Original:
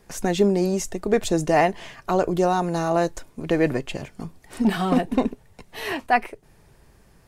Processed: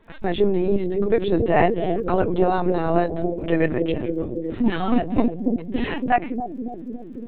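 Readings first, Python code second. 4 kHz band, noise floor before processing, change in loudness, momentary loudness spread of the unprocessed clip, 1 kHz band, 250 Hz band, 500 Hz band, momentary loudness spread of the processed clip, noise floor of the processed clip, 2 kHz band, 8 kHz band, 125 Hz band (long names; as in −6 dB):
−3.0 dB, −56 dBFS, +0.5 dB, 15 LU, 0.0 dB, +2.0 dB, +2.0 dB, 9 LU, −36 dBFS, −1.0 dB, below −35 dB, +1.0 dB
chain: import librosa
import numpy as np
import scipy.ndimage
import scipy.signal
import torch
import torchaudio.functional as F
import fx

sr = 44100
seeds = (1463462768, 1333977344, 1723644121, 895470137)

y = fx.echo_bbd(x, sr, ms=282, stages=1024, feedback_pct=78, wet_db=-4)
y = fx.lpc_vocoder(y, sr, seeds[0], excitation='pitch_kept', order=16)
y = fx.dmg_crackle(y, sr, seeds[1], per_s=43.0, level_db=-51.0)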